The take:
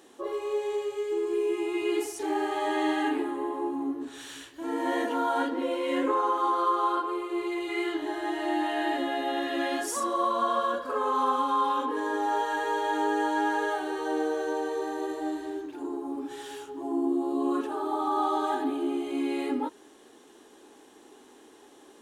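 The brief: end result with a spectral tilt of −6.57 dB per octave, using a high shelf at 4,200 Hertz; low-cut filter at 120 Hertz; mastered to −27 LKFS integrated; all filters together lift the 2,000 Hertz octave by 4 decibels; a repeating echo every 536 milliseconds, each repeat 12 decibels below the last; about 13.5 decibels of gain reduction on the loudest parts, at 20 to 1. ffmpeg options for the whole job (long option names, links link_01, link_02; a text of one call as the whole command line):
ffmpeg -i in.wav -af "highpass=120,equalizer=frequency=2000:width_type=o:gain=6.5,highshelf=frequency=4200:gain=-8.5,acompressor=threshold=-35dB:ratio=20,aecho=1:1:536|1072|1608:0.251|0.0628|0.0157,volume=12dB" out.wav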